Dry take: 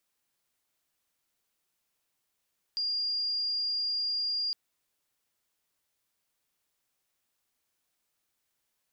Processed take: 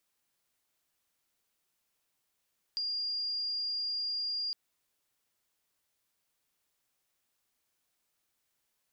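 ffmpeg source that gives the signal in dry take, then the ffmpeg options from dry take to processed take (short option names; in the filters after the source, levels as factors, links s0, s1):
-f lavfi -i "aevalsrc='0.0398*sin(2*PI*4810*t)':d=1.76:s=44100"
-af "acompressor=threshold=0.0224:ratio=6"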